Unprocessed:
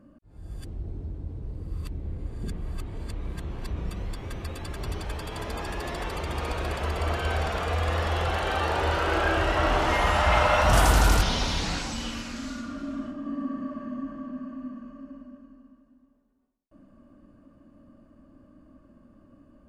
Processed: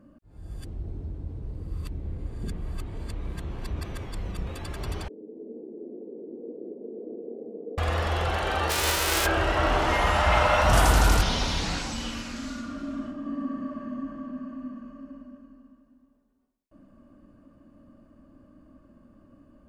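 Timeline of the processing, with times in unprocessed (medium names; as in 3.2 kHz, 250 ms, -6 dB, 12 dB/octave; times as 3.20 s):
3.81–4.47 s: reverse
5.08–7.78 s: elliptic band-pass 220–470 Hz, stop band 60 dB
8.69–9.25 s: formants flattened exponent 0.3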